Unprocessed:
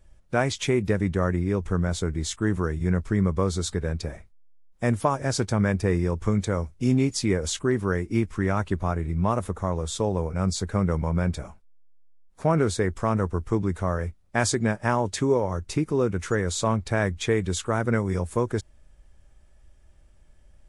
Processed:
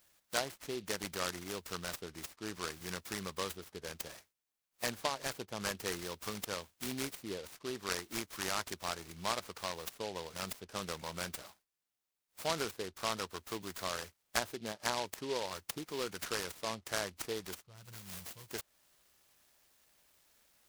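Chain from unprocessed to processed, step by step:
gain on a spectral selection 0:17.54–0:18.52, 210–2,700 Hz −23 dB
first difference
treble cut that deepens with the level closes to 920 Hz, closed at −36 dBFS
short delay modulated by noise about 3,300 Hz, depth 0.11 ms
level +9 dB

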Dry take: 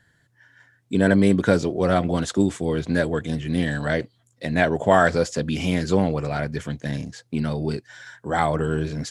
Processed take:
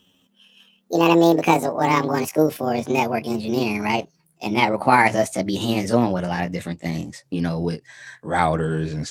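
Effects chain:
pitch glide at a constant tempo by +10.5 semitones ending unshifted
every ending faded ahead of time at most 410 dB per second
level +2.5 dB

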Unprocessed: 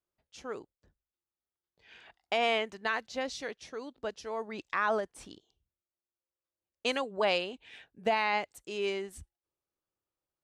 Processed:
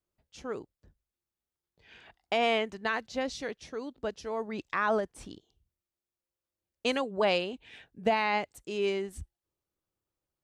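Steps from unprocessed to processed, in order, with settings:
low-shelf EQ 320 Hz +8.5 dB

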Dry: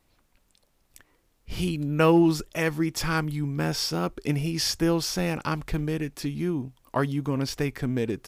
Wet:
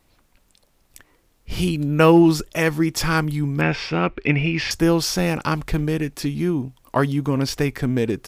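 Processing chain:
0:03.61–0:04.71: low-pass with resonance 2,400 Hz, resonance Q 3.7
level +6 dB

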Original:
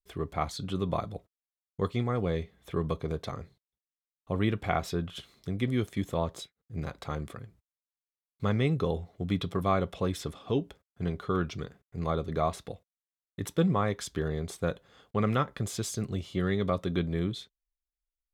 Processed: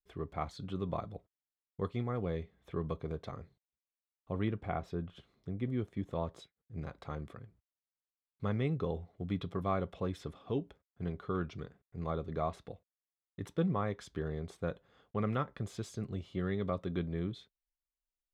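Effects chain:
low-pass filter 2,400 Hz 6 dB per octave, from 0:04.48 1,000 Hz, from 0:06.11 2,300 Hz
level −6 dB

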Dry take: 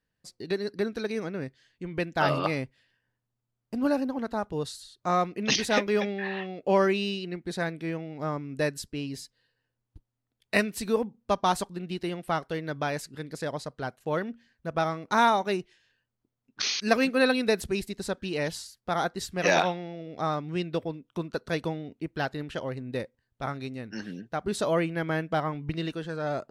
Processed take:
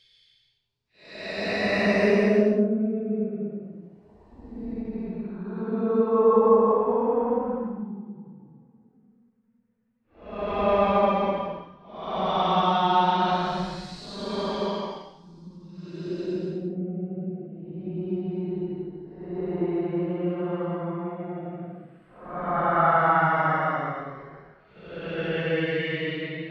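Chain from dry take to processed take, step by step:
de-essing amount 100%
auto-filter low-pass saw up 0.85 Hz 510–6,000 Hz
extreme stretch with random phases 12×, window 0.10 s, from 0:10.41
every ending faded ahead of time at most 250 dB per second
level +2.5 dB

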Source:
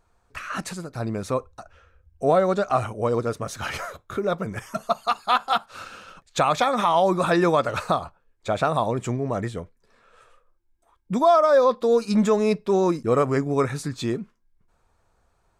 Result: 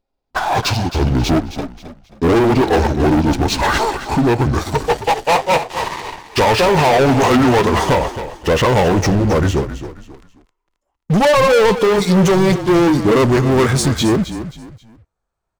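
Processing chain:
pitch glide at a constant tempo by −9.5 semitones ending unshifted
leveller curve on the samples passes 5
echo with shifted repeats 267 ms, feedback 33%, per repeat −35 Hz, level −11.5 dB

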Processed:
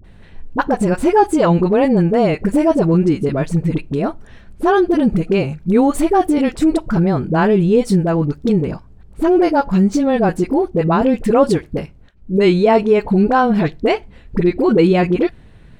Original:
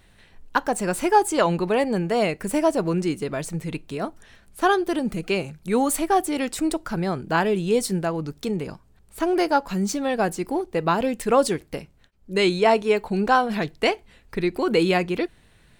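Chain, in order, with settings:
low-pass filter 2,700 Hz 6 dB per octave
low-shelf EQ 480 Hz +9 dB
in parallel at +1 dB: brickwall limiter −14.5 dBFS, peak gain reduction 11.5 dB
on the sum: all-pass dispersion highs, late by 44 ms, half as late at 600 Hz
level −1 dB

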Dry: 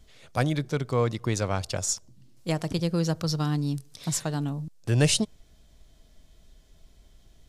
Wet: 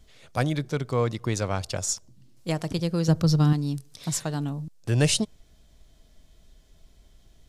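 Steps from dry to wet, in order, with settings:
0:03.08–0:03.53: low-shelf EQ 380 Hz +9.5 dB

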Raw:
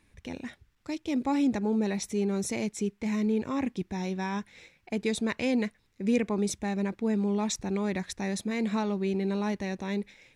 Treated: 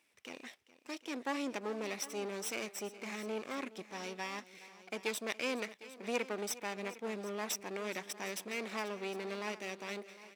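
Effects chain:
lower of the sound and its delayed copy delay 0.36 ms
high-pass filter 540 Hz 12 dB per octave
on a send: multi-tap delay 417/757 ms −18/−17 dB
on the sum: level −2 dB

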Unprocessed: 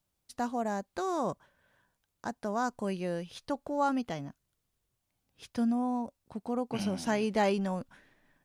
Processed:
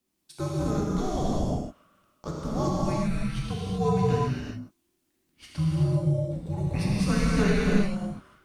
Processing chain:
frequency shifter −390 Hz
reverb whose tail is shaped and stops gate 410 ms flat, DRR −6 dB

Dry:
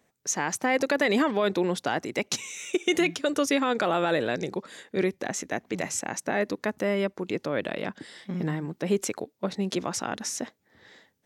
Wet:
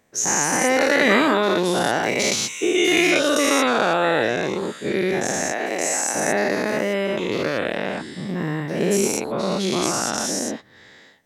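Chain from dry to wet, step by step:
every bin's largest magnitude spread in time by 240 ms
0:05.52–0:06.15: high-pass filter 340 Hz 12 dB per octave

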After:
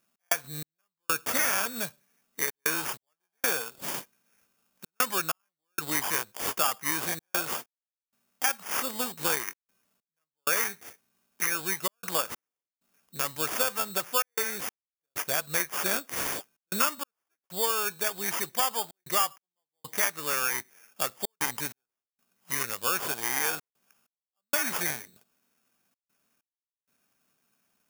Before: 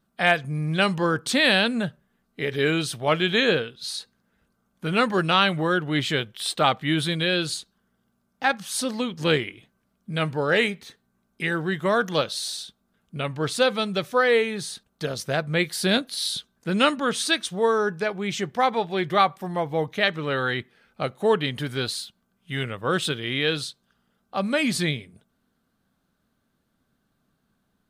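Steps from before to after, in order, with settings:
decimation without filtering 11×
dynamic equaliser 1,200 Hz, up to +7 dB, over −36 dBFS, Q 1.3
gate pattern "x.xx...xxxxxxxx" 96 BPM −60 dB
RIAA equalisation recording
downward compressor 3 to 1, threshold −21 dBFS, peak gain reduction 12.5 dB
level −3 dB

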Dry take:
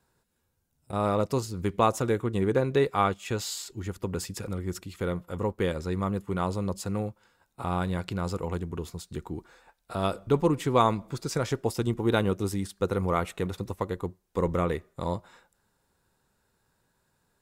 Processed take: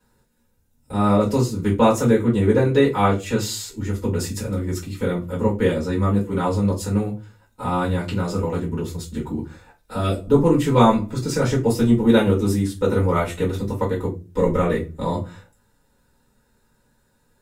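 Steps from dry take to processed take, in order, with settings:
0:09.99–0:10.45: parametric band 680 Hz → 3,700 Hz −14 dB 0.8 octaves
convolution reverb, pre-delay 3 ms, DRR −5.5 dB
level −2.5 dB

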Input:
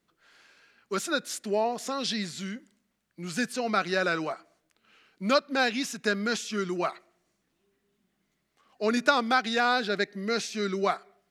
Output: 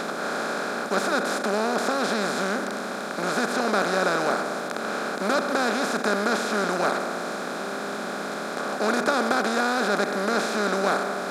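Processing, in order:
compressor on every frequency bin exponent 0.2
dynamic equaliser 3,100 Hz, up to −7 dB, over −34 dBFS, Q 0.79
level −4.5 dB

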